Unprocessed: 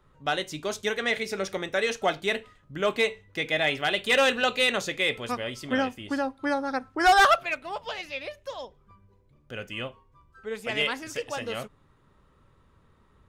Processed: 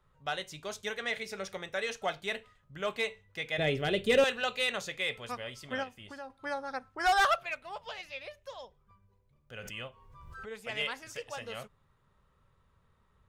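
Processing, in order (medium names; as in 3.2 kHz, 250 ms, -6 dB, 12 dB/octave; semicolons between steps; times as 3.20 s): 3.58–4.24 s: resonant low shelf 580 Hz +13 dB, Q 1.5; 5.83–6.30 s: compression 4:1, threshold -32 dBFS, peak gain reduction 7.5 dB; peaking EQ 300 Hz -10.5 dB 0.66 oct; 9.58–10.49 s: swell ahead of each attack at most 35 dB/s; trim -7 dB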